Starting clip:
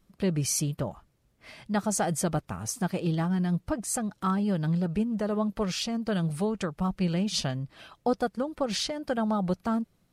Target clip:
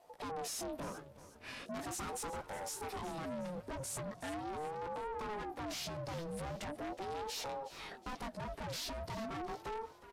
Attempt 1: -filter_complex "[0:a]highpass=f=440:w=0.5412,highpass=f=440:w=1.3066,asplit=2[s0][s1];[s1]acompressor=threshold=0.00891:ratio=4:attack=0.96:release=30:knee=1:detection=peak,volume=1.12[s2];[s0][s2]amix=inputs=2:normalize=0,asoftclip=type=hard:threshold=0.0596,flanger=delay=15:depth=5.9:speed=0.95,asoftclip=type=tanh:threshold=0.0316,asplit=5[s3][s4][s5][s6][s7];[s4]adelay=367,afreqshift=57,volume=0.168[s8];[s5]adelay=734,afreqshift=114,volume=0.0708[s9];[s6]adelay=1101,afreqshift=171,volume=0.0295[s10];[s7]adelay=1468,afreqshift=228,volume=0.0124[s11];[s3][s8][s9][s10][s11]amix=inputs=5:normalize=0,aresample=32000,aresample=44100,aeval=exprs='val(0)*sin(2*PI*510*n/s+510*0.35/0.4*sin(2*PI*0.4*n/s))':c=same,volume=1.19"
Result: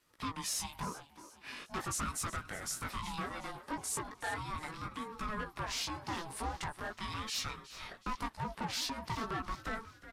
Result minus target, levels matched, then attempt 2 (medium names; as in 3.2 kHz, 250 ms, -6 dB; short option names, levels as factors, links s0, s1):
500 Hz band -8.5 dB; saturation: distortion -8 dB
-filter_complex "[0:a]asplit=2[s0][s1];[s1]acompressor=threshold=0.00891:ratio=4:attack=0.96:release=30:knee=1:detection=peak,volume=1.12[s2];[s0][s2]amix=inputs=2:normalize=0,asoftclip=type=hard:threshold=0.0596,flanger=delay=15:depth=5.9:speed=0.95,asoftclip=type=tanh:threshold=0.0119,asplit=5[s3][s4][s5][s6][s7];[s4]adelay=367,afreqshift=57,volume=0.168[s8];[s5]adelay=734,afreqshift=114,volume=0.0708[s9];[s6]adelay=1101,afreqshift=171,volume=0.0295[s10];[s7]adelay=1468,afreqshift=228,volume=0.0124[s11];[s3][s8][s9][s10][s11]amix=inputs=5:normalize=0,aresample=32000,aresample=44100,aeval=exprs='val(0)*sin(2*PI*510*n/s+510*0.35/0.4*sin(2*PI*0.4*n/s))':c=same,volume=1.19"